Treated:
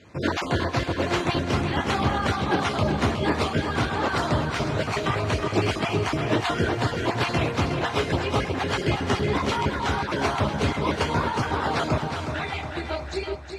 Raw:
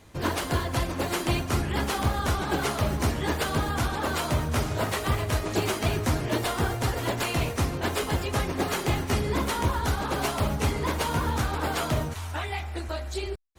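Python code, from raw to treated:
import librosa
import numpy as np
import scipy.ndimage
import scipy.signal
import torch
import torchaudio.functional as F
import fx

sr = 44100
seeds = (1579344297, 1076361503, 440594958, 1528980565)

p1 = fx.spec_dropout(x, sr, seeds[0], share_pct=26)
p2 = fx.bandpass_edges(p1, sr, low_hz=100.0, high_hz=4800.0)
p3 = p2 + fx.echo_feedback(p2, sr, ms=365, feedback_pct=52, wet_db=-7, dry=0)
y = F.gain(torch.from_numpy(p3), 4.0).numpy()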